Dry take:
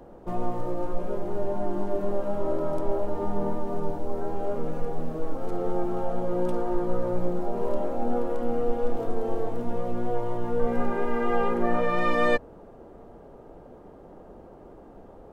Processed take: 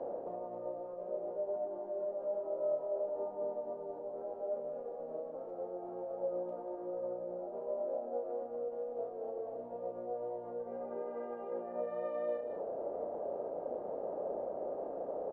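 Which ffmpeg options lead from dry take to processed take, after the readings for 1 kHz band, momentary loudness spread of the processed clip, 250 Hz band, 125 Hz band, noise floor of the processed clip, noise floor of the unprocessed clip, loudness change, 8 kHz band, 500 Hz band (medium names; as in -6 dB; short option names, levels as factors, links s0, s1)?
-13.5 dB, 5 LU, -18.0 dB, under -25 dB, -45 dBFS, -48 dBFS, -10.5 dB, no reading, -7.5 dB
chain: -filter_complex "[0:a]areverse,acompressor=threshold=0.0282:ratio=6,areverse,alimiter=level_in=4.47:limit=0.0631:level=0:latency=1:release=249,volume=0.224,bandpass=f=580:t=q:w=4.1:csg=0,asplit=2[s0][s1];[s1]adelay=33,volume=0.501[s2];[s0][s2]amix=inputs=2:normalize=0,aecho=1:1:185|222:0.398|0.15,volume=5.01"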